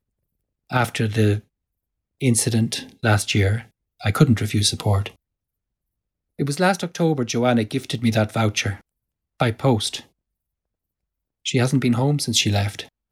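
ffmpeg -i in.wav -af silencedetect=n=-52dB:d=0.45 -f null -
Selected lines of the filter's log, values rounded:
silence_start: 0.00
silence_end: 0.70 | silence_duration: 0.70
silence_start: 1.44
silence_end: 2.20 | silence_duration: 0.76
silence_start: 5.16
silence_end: 6.39 | silence_duration: 1.23
silence_start: 8.81
silence_end: 9.40 | silence_duration: 0.59
silence_start: 10.08
silence_end: 11.45 | silence_duration: 1.37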